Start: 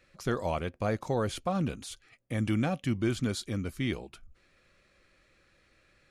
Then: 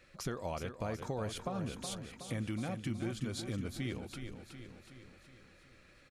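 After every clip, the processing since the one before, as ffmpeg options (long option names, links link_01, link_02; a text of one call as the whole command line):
ffmpeg -i in.wav -filter_complex "[0:a]acompressor=threshold=-39dB:ratio=4,asplit=2[link_01][link_02];[link_02]aecho=0:1:370|740|1110|1480|1850|2220|2590:0.398|0.219|0.12|0.0662|0.0364|0.02|0.011[link_03];[link_01][link_03]amix=inputs=2:normalize=0,volume=2dB" out.wav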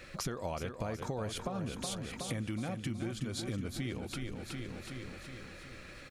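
ffmpeg -i in.wav -af "acompressor=threshold=-50dB:ratio=3,volume=12dB" out.wav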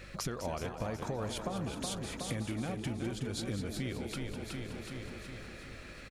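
ffmpeg -i in.wav -filter_complex "[0:a]asplit=6[link_01][link_02][link_03][link_04][link_05][link_06];[link_02]adelay=203,afreqshift=100,volume=-9.5dB[link_07];[link_03]adelay=406,afreqshift=200,volume=-16.8dB[link_08];[link_04]adelay=609,afreqshift=300,volume=-24.2dB[link_09];[link_05]adelay=812,afreqshift=400,volume=-31.5dB[link_10];[link_06]adelay=1015,afreqshift=500,volume=-38.8dB[link_11];[link_01][link_07][link_08][link_09][link_10][link_11]amix=inputs=6:normalize=0,aeval=exprs='val(0)+0.00224*(sin(2*PI*50*n/s)+sin(2*PI*2*50*n/s)/2+sin(2*PI*3*50*n/s)/3+sin(2*PI*4*50*n/s)/4+sin(2*PI*5*50*n/s)/5)':channel_layout=same" out.wav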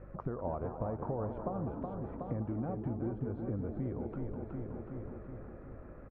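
ffmpeg -i in.wav -af "lowpass=frequency=1100:width=0.5412,lowpass=frequency=1100:width=1.3066,equalizer=frequency=190:width_type=o:width=0.37:gain=-2.5,volume=1dB" out.wav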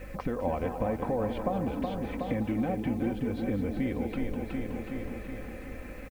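ffmpeg -i in.wav -af "aecho=1:1:3.9:0.54,aexciter=amount=10.2:drive=7.3:freq=2000,volume=6dB" out.wav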